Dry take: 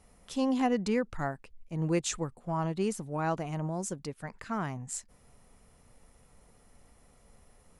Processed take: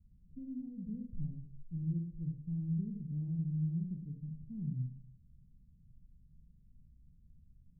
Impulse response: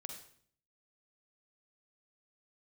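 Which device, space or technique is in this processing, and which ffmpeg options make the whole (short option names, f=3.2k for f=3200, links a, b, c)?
club heard from the street: -filter_complex "[0:a]alimiter=limit=-23dB:level=0:latency=1:release=218,lowpass=f=180:w=0.5412,lowpass=f=180:w=1.3066[a];[1:a]atrim=start_sample=2205[b];[a][b]afir=irnorm=-1:irlink=0,volume=5dB"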